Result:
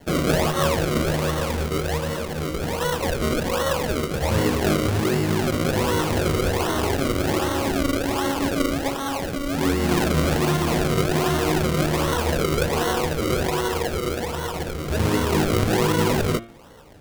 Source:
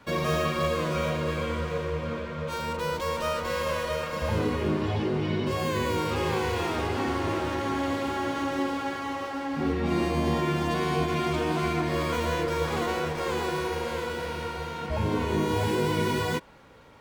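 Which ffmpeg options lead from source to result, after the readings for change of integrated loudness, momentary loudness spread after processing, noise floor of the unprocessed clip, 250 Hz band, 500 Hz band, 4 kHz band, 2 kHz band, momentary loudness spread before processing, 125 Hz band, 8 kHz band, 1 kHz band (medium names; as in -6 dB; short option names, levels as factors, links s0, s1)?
+5.5 dB, 6 LU, -35 dBFS, +6.0 dB, +5.0 dB, +7.0 dB, +4.5 dB, 6 LU, +6.5 dB, +12.0 dB, +3.5 dB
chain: -af "acrusher=samples=35:mix=1:aa=0.000001:lfo=1:lforange=35:lforate=1.3,bandreject=f=115.5:t=h:w=4,bandreject=f=231:t=h:w=4,bandreject=f=346.5:t=h:w=4,bandreject=f=462:t=h:w=4,bandreject=f=577.5:t=h:w=4,bandreject=f=693:t=h:w=4,bandreject=f=808.5:t=h:w=4,bandreject=f=924:t=h:w=4,bandreject=f=1039.5:t=h:w=4,bandreject=f=1155:t=h:w=4,bandreject=f=1270.5:t=h:w=4,bandreject=f=1386:t=h:w=4,bandreject=f=1501.5:t=h:w=4,bandreject=f=1617:t=h:w=4,bandreject=f=1732.5:t=h:w=4,bandreject=f=1848:t=h:w=4,bandreject=f=1963.5:t=h:w=4,bandreject=f=2079:t=h:w=4,bandreject=f=2194.5:t=h:w=4,bandreject=f=2310:t=h:w=4,bandreject=f=2425.5:t=h:w=4,bandreject=f=2541:t=h:w=4,bandreject=f=2656.5:t=h:w=4,bandreject=f=2772:t=h:w=4,bandreject=f=2887.5:t=h:w=4,bandreject=f=3003:t=h:w=4,bandreject=f=3118.5:t=h:w=4,bandreject=f=3234:t=h:w=4,bandreject=f=3349.5:t=h:w=4,bandreject=f=3465:t=h:w=4,bandreject=f=3580.5:t=h:w=4,bandreject=f=3696:t=h:w=4,volume=2"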